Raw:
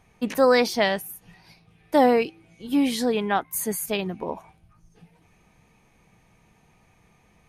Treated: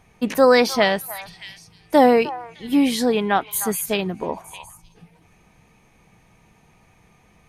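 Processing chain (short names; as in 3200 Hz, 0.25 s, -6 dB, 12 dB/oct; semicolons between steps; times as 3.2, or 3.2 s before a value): delay with a stepping band-pass 0.305 s, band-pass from 1100 Hz, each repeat 1.4 oct, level -10 dB; gain +4 dB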